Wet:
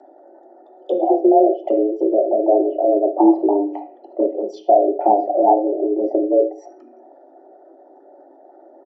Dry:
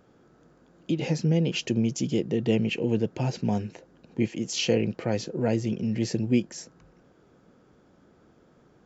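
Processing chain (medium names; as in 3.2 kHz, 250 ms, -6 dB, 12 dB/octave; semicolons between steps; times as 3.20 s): resonances exaggerated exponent 2; high-pass 120 Hz 12 dB/octave; low-pass that closes with the level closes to 400 Hz, closed at -25 dBFS; dynamic bell 640 Hz, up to +3 dB, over -38 dBFS, Q 1.3; comb 1.8 ms, depth 72%; frequency shift +200 Hz; distance through air 56 m; reverberation RT60 0.45 s, pre-delay 3 ms, DRR 2.5 dB; trim +3.5 dB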